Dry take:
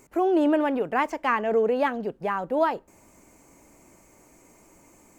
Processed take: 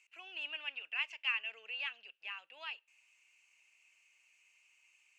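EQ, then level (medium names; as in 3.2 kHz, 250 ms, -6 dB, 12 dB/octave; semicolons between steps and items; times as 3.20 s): ladder band-pass 2.8 kHz, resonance 85%; +3.0 dB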